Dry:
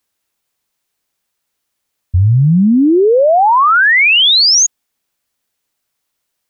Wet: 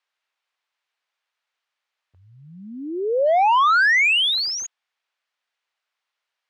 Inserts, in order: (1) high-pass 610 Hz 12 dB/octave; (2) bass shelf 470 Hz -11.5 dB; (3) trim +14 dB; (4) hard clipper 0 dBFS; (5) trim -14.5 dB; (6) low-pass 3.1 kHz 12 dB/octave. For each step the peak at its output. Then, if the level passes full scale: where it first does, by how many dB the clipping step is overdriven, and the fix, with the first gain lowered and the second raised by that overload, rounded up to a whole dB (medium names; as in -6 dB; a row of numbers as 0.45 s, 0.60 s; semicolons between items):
-6.0 dBFS, -6.0 dBFS, +8.0 dBFS, 0.0 dBFS, -14.5 dBFS, -14.0 dBFS; step 3, 8.0 dB; step 3 +6 dB, step 5 -6.5 dB